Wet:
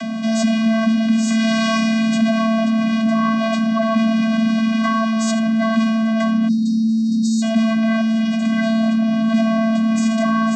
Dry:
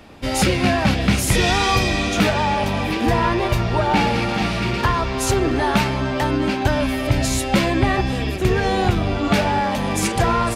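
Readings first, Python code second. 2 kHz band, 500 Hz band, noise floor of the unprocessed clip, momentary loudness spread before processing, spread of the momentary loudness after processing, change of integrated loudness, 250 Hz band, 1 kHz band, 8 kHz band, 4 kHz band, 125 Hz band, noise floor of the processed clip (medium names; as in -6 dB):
-2.5 dB, -3.0 dB, -24 dBFS, 4 LU, 1 LU, +2.0 dB, +7.5 dB, -4.5 dB, -5.5 dB, -3.5 dB, -8.0 dB, -19 dBFS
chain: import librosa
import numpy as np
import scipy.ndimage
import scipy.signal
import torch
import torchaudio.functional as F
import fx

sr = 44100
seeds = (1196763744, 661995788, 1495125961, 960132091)

y = fx.vocoder(x, sr, bands=16, carrier='square', carrier_hz=223.0)
y = fx.high_shelf(y, sr, hz=2700.0, db=10.0)
y = y + 10.0 ** (-13.0 / 20.0) * np.pad(y, (int(80 * sr / 1000.0), 0))[:len(y)]
y = fx.spec_erase(y, sr, start_s=6.48, length_s=0.94, low_hz=490.0, high_hz=3700.0)
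y = fx.env_flatten(y, sr, amount_pct=70)
y = y * 10.0 ** (-4.5 / 20.0)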